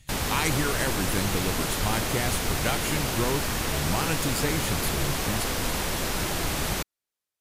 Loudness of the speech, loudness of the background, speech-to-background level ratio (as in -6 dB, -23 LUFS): -30.5 LUFS, -27.5 LUFS, -3.0 dB